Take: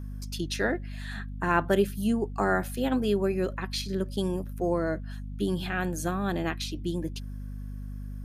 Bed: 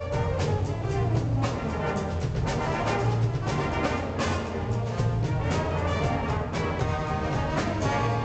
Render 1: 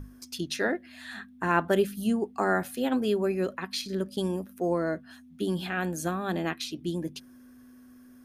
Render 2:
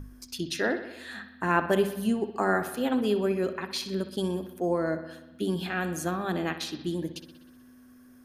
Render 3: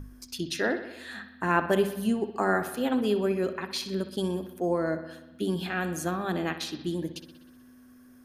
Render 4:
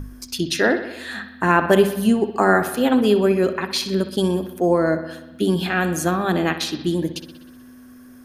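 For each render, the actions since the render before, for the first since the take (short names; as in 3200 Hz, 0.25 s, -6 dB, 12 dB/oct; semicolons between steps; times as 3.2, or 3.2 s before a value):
notches 50/100/150/200 Hz
analogue delay 62 ms, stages 2048, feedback 65%, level -12 dB
nothing audible
gain +9.5 dB; limiter -3 dBFS, peak gain reduction 3 dB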